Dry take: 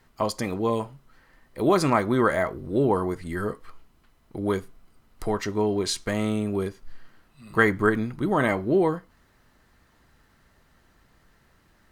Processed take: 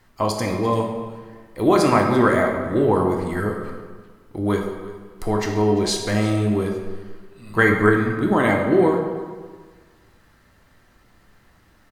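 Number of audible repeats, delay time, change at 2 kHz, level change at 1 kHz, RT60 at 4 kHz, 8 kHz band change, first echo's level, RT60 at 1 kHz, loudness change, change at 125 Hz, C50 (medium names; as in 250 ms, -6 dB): 1, 342 ms, +5.0 dB, +5.0 dB, 1.1 s, +4.0 dB, -19.5 dB, 1.5 s, +5.0 dB, +6.5 dB, 4.5 dB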